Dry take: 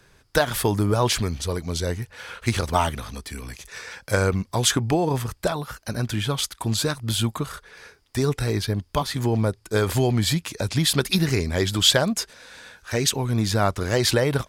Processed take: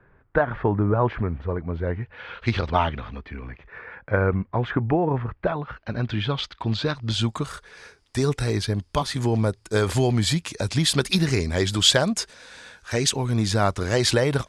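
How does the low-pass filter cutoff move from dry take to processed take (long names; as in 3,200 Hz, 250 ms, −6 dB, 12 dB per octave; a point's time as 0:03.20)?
low-pass filter 24 dB per octave
0:01.78 1,800 Hz
0:02.47 4,300 Hz
0:03.68 2,000 Hz
0:05.24 2,000 Hz
0:06.18 4,000 Hz
0:06.84 4,000 Hz
0:07.50 10,000 Hz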